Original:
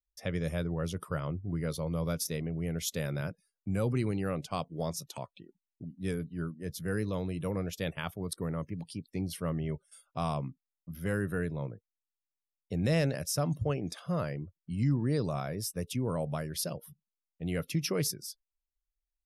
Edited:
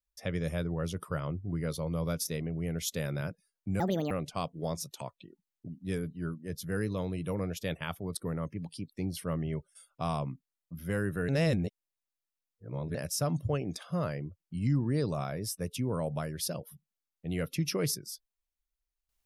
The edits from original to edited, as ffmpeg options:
-filter_complex "[0:a]asplit=5[s0][s1][s2][s3][s4];[s0]atrim=end=3.804[s5];[s1]atrim=start=3.8:end=4.27,asetpts=PTS-STARTPTS,asetrate=67473,aresample=44100,atrim=end_sample=13547,asetpts=PTS-STARTPTS[s6];[s2]atrim=start=4.266:end=11.452[s7];[s3]atrim=start=11.448:end=13.112,asetpts=PTS-STARTPTS,areverse[s8];[s4]atrim=start=13.108[s9];[s5][s6]acrossfade=d=0.004:c1=hsin:c2=hsin[s10];[s10][s7]acrossfade=d=0.004:c1=hsin:c2=hsin[s11];[s11][s8]acrossfade=d=0.004:c1=hsin:c2=hsin[s12];[s12][s9]acrossfade=d=0.004:c1=hsin:c2=hsin"

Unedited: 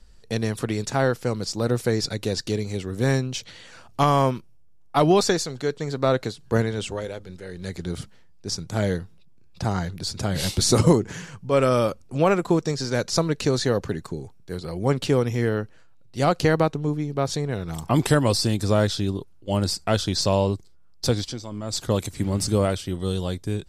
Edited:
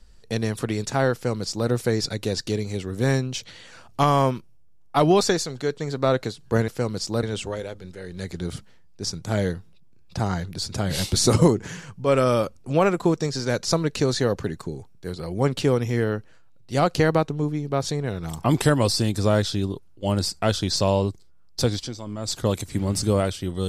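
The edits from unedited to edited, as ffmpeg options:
-filter_complex "[0:a]asplit=3[s0][s1][s2];[s0]atrim=end=6.682[s3];[s1]atrim=start=1.138:end=1.692[s4];[s2]atrim=start=6.678[s5];[s3][s4]acrossfade=d=0.004:c1=hsin:c2=hsin[s6];[s6][s5]acrossfade=d=0.004:c1=hsin:c2=hsin"

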